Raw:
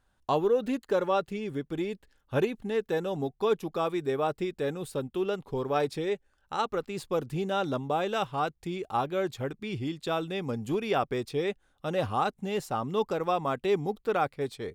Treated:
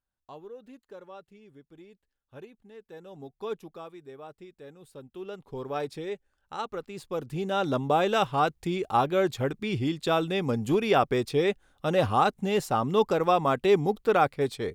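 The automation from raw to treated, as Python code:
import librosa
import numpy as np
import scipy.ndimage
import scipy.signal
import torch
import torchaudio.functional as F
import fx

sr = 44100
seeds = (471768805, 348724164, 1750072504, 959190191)

y = fx.gain(x, sr, db=fx.line((2.79, -19.0), (3.52, -7.5), (3.96, -16.0), (4.75, -16.0), (5.63, -4.5), (7.03, -4.5), (7.87, 5.0)))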